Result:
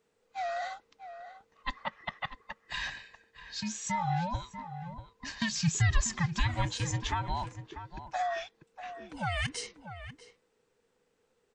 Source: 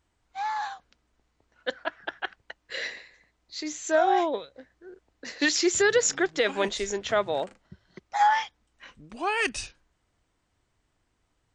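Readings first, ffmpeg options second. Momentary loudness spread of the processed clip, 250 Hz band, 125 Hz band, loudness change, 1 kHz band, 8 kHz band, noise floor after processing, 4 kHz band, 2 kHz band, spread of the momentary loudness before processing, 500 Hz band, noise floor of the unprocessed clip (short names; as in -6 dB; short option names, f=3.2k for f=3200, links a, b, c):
16 LU, -5.0 dB, +18.0 dB, -7.5 dB, -7.5 dB, -6.5 dB, -75 dBFS, -5.5 dB, -7.5 dB, 18 LU, -15.0 dB, -74 dBFS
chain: -filter_complex "[0:a]afftfilt=real='real(if(between(b,1,1008),(2*floor((b-1)/24)+1)*24-b,b),0)':imag='imag(if(between(b,1,1008),(2*floor((b-1)/24)+1)*24-b,b),0)*if(between(b,1,1008),-1,1)':win_size=2048:overlap=0.75,acrossover=split=160[a][b];[b]acompressor=threshold=-30dB:ratio=4[c];[a][c]amix=inputs=2:normalize=0,asplit=2[d][e];[e]adelay=641.4,volume=-11dB,highshelf=f=4k:g=-14.4[f];[d][f]amix=inputs=2:normalize=0,volume=-1.5dB"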